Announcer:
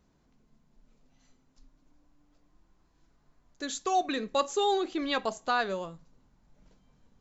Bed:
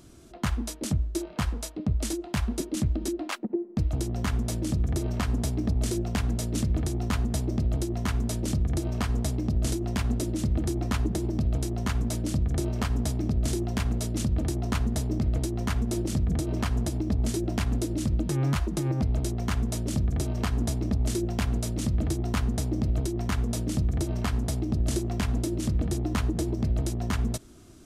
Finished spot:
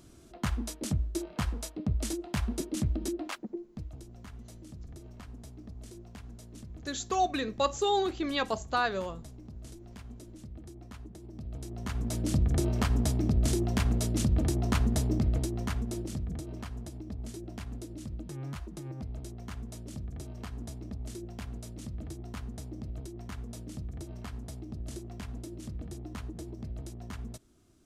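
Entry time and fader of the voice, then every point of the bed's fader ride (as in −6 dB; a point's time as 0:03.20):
3.25 s, −0.5 dB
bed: 0:03.21 −3.5 dB
0:04.07 −19.5 dB
0:11.19 −19.5 dB
0:12.33 0 dB
0:15.10 0 dB
0:16.73 −13.5 dB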